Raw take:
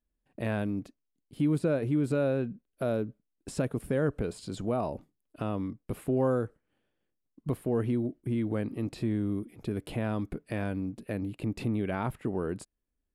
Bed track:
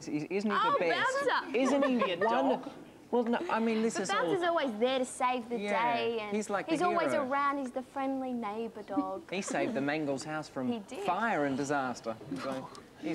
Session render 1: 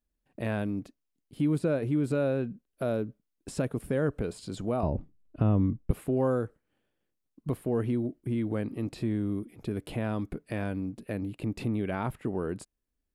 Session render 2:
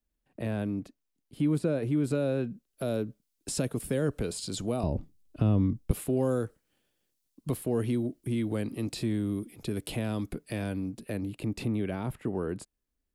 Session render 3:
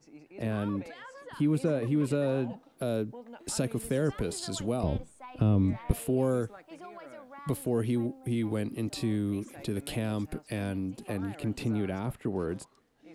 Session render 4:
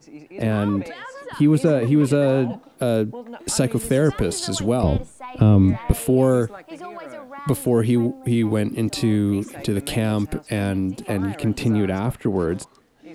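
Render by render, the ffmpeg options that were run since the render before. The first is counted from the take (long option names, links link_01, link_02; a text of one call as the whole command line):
ffmpeg -i in.wav -filter_complex "[0:a]asettb=1/sr,asplit=3[link_01][link_02][link_03];[link_01]atrim=end=4.834[link_04];[link_02]atrim=start=4.83:end=5.91,asetpts=PTS-STARTPTS,afade=type=in:duration=0.004:curve=qsin,afade=type=out:start_time=1.076:duration=0.004:curve=qsin,aemphasis=mode=reproduction:type=riaa[link_05];[link_03]atrim=start=5.906[link_06];[link_04][link_05]acrossfade=duration=0.004:curve1=hsin:curve2=qsin[link_07];[link_07][link_06]acrossfade=duration=0.004:curve1=qsin:curve2=hsin" out.wav
ffmpeg -i in.wav -filter_complex "[0:a]acrossover=split=240|580|3300[link_01][link_02][link_03][link_04];[link_03]alimiter=level_in=10dB:limit=-24dB:level=0:latency=1:release=36,volume=-10dB[link_05];[link_04]dynaudnorm=framelen=320:gausssize=17:maxgain=11.5dB[link_06];[link_01][link_02][link_05][link_06]amix=inputs=4:normalize=0" out.wav
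ffmpeg -i in.wav -i bed.wav -filter_complex "[1:a]volume=-17dB[link_01];[0:a][link_01]amix=inputs=2:normalize=0" out.wav
ffmpeg -i in.wav -af "volume=10.5dB,alimiter=limit=-1dB:level=0:latency=1" out.wav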